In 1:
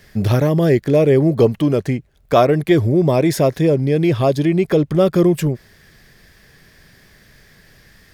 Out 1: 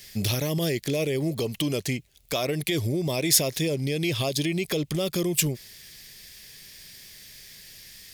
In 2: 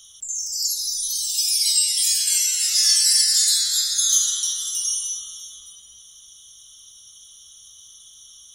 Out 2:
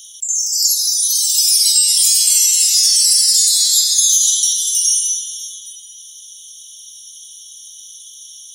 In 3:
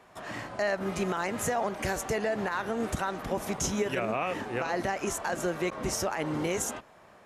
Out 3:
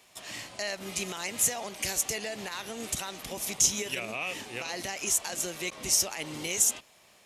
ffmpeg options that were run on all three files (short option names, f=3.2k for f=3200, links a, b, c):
-af "alimiter=limit=-11.5dB:level=0:latency=1:release=103,aexciter=amount=6.3:drive=4.3:freq=2.2k,volume=-8.5dB"